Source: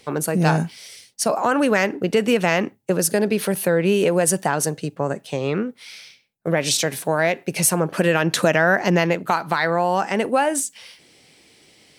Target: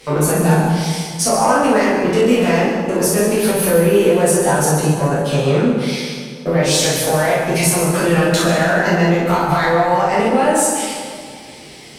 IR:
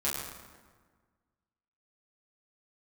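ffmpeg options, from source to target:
-filter_complex "[0:a]acompressor=threshold=-25dB:ratio=6,asoftclip=type=tanh:threshold=-20dB[link_01];[1:a]atrim=start_sample=2205,asetrate=31311,aresample=44100[link_02];[link_01][link_02]afir=irnorm=-1:irlink=0,volume=5.5dB"

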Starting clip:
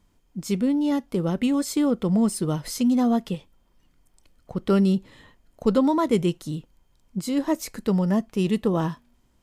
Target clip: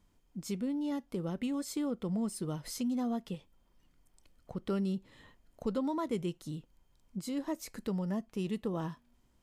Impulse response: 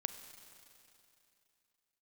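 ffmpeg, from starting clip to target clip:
-af "acompressor=threshold=-38dB:ratio=1.5,volume=-5.5dB"

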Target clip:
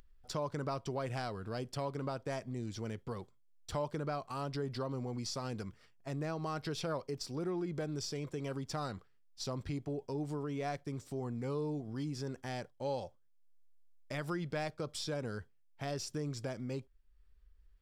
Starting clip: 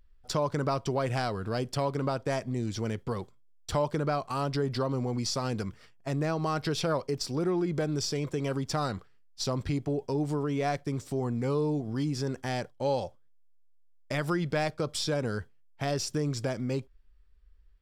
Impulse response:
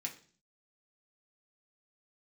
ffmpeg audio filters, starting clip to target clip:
-af "acompressor=mode=upward:threshold=-45dB:ratio=2.5,volume=-8.5dB"

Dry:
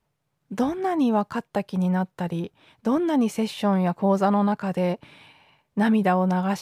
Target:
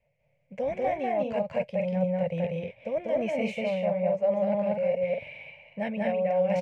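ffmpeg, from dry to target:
ffmpeg -i in.wav -af "firequalizer=gain_entry='entry(140,0);entry(350,-20);entry(540,14);entry(790,-4);entry(1300,-20);entry(2200,10);entry(3600,-13);entry(7000,-13);entry(11000,-24)':delay=0.05:min_phase=1,areverse,acompressor=threshold=-27dB:ratio=6,areverse,aecho=1:1:192.4|236.2:0.891|0.501" out.wav

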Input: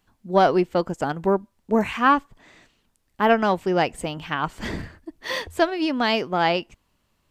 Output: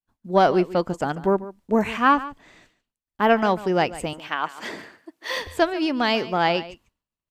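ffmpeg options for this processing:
ffmpeg -i in.wav -filter_complex "[0:a]agate=range=-33dB:threshold=-53dB:ratio=3:detection=peak,asettb=1/sr,asplit=3[link_01][link_02][link_03];[link_01]atrim=end=4.134[link_04];[link_02]atrim=start=4.13:end=5.37,asetpts=PTS-STARTPTS,afade=type=in:duration=0.004:curve=qsin,afade=type=out:start_time=1.236:duration=0.004:curve=qsin,highpass=400[link_05];[link_03]atrim=start=5.366[link_06];[link_04][link_05]acrossfade=duration=0.004:curve1=hsin:curve2=qsin[link_07];[link_07][link_06]acrossfade=duration=0.004:curve1=qsin:curve2=hsin,asplit=2[link_08][link_09];[link_09]aecho=0:1:144:0.15[link_10];[link_08][link_10]amix=inputs=2:normalize=0" out.wav

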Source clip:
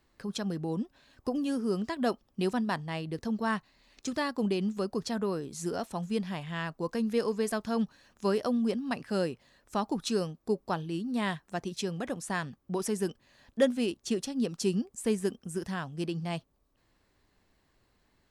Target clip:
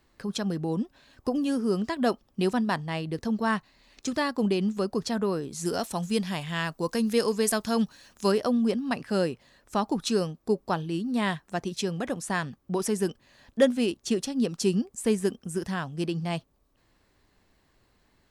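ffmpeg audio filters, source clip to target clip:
ffmpeg -i in.wav -filter_complex "[0:a]asettb=1/sr,asplit=3[link_01][link_02][link_03];[link_01]atrim=end=5.654[link_04];[link_02]atrim=start=5.65:end=8.32,asetpts=PTS-STARTPTS,afade=type=in:duration=0.004:curve=qsin,afade=type=out:start_time=2.666:duration=0.004:curve=qsin,highshelf=frequency=3700:gain=10[link_05];[link_03]atrim=start=8.316[link_06];[link_04][link_05]acrossfade=duration=0.004:curve1=hsin:curve2=qsin[link_07];[link_07][link_06]acrossfade=duration=0.004:curve1=qsin:curve2=hsin,volume=4dB" out.wav

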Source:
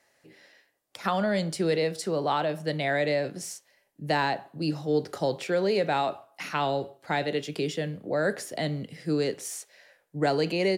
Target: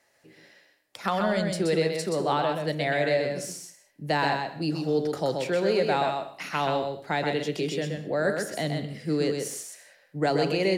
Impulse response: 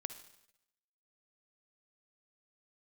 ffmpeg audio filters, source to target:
-filter_complex "[0:a]asplit=2[link_01][link_02];[1:a]atrim=start_sample=2205,afade=type=out:start_time=0.26:duration=0.01,atrim=end_sample=11907,adelay=127[link_03];[link_02][link_03]afir=irnorm=-1:irlink=0,volume=-2dB[link_04];[link_01][link_04]amix=inputs=2:normalize=0"

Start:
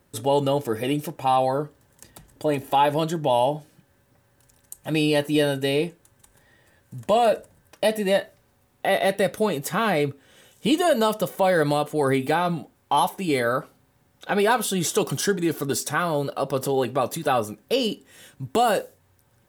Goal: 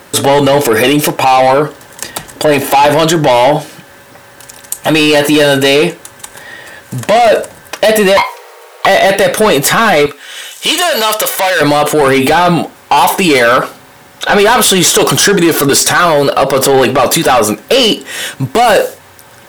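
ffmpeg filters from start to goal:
ffmpeg -i in.wav -filter_complex "[0:a]asettb=1/sr,asplit=3[link_01][link_02][link_03];[link_01]atrim=end=8.174[link_04];[link_02]atrim=start=8.17:end=8.86,asetpts=PTS-STARTPTS,afade=type=in:duration=0.004:curve=qsin,afade=type=out:start_time=0.686:duration=0.004:curve=qsin,afreqshift=370[link_05];[link_03]atrim=start=8.856[link_06];[link_04][link_05]acrossfade=duration=0.004:curve1=hsin:curve2=qsin[link_07];[link_07][link_06]acrossfade=duration=0.004:curve1=qsin:curve2=hsin,asplit=2[link_08][link_09];[link_09]highpass=frequency=720:poles=1,volume=20dB,asoftclip=type=tanh:threshold=-9.5dB[link_10];[link_08][link_10]amix=inputs=2:normalize=0,lowpass=frequency=6000:poles=1,volume=-6dB,asettb=1/sr,asplit=3[link_11][link_12][link_13];[link_11]atrim=end=10.064[link_14];[link_12]atrim=start=10.06:end=11.61,asetpts=PTS-STARTPTS,afade=type=in:duration=0.004:curve=qsin,afade=type=out:start_time=1.546:duration=0.004:curve=qsin,highpass=frequency=1500:poles=1[link_15];[link_13]atrim=start=11.606[link_16];[link_14][link_15]acrossfade=duration=0.004:curve1=hsin:curve2=qsin[link_17];[link_17][link_16]acrossfade=duration=0.004:curve1=qsin:curve2=hsin,alimiter=level_in=17.5dB:limit=-1dB:release=50:level=0:latency=1,volume=-1dB" out.wav

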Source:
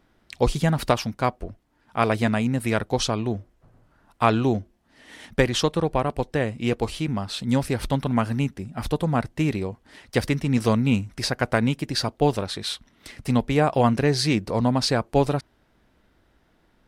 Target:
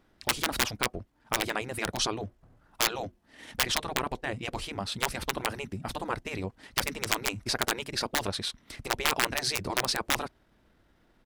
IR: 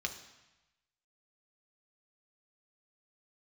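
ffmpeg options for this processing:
-af "aeval=exprs='(mod(3.35*val(0)+1,2)-1)/3.35':channel_layout=same,atempo=1.5,afftfilt=real='re*lt(hypot(re,im),0.282)':imag='im*lt(hypot(re,im),0.282)':win_size=1024:overlap=0.75,volume=-2dB"

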